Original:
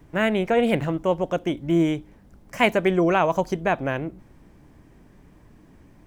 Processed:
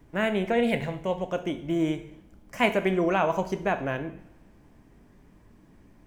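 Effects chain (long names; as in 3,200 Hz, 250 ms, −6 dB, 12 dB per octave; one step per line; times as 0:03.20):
0:00.52–0:01.28: thirty-one-band graphic EQ 315 Hz −11 dB, 1,250 Hz −9 dB, 2,000 Hz +5 dB, 4,000 Hz +5 dB
coupled-rooms reverb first 0.66 s, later 2.4 s, from −25 dB, DRR 8 dB
level −4.5 dB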